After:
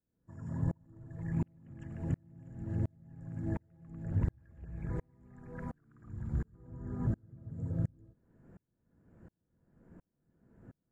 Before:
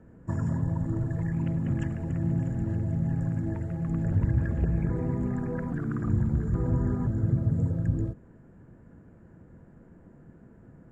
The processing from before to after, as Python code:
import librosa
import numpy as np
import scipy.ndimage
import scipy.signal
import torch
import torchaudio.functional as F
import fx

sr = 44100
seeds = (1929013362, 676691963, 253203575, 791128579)

y = fx.peak_eq(x, sr, hz=280.0, db=-6.5, octaves=2.8, at=(4.23, 6.45))
y = fx.tremolo_decay(y, sr, direction='swelling', hz=1.4, depth_db=39)